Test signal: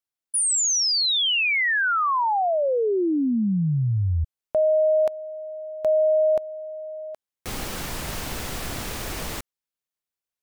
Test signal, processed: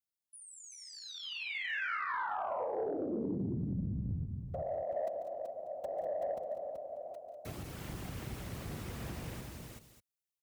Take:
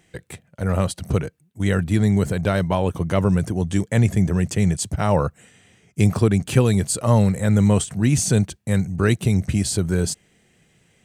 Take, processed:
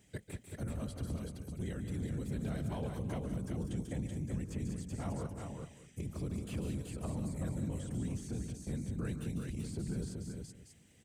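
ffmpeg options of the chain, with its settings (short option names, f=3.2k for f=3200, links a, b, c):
-filter_complex "[0:a]afftfilt=real='hypot(re,im)*cos(2*PI*random(0))':imag='hypot(re,im)*sin(2*PI*random(1))':win_size=512:overlap=0.75,equalizer=f=1.2k:w=0.36:g=-9.5,acompressor=threshold=-32dB:ratio=6:attack=4.6:release=145:knee=1:detection=rms,alimiter=level_in=8dB:limit=-24dB:level=0:latency=1:release=466,volume=-8dB,asplit=2[a][b];[b]aecho=0:1:142|175|196|380|590:0.211|0.141|0.299|0.531|0.112[c];[a][c]amix=inputs=2:normalize=0,asoftclip=type=tanh:threshold=-28dB,highpass=52,acrossover=split=2700[d][e];[e]acompressor=threshold=-56dB:ratio=4:attack=1:release=60[f];[d][f]amix=inputs=2:normalize=0,volume=3dB"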